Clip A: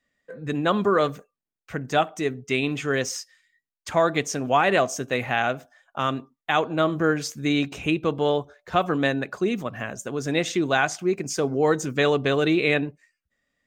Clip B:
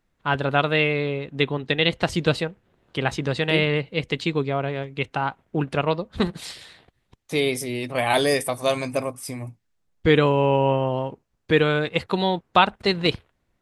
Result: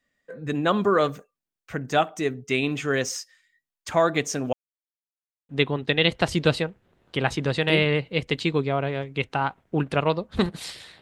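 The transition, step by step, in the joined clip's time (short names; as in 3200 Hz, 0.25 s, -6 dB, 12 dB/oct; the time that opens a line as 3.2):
clip A
4.53–5.49 mute
5.49 switch to clip B from 1.3 s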